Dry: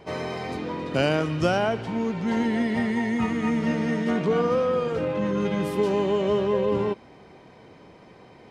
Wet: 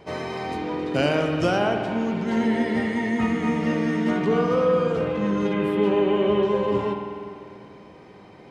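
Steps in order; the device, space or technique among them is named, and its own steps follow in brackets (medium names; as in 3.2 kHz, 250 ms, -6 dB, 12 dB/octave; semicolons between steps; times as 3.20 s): dub delay into a spring reverb (filtered feedback delay 438 ms, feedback 71%, low-pass 1.1 kHz, level -24 dB; spring tank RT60 2.1 s, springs 49 ms, chirp 35 ms, DRR 3.5 dB); 5.53–6.43 s: resonant high shelf 4 kHz -10.5 dB, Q 1.5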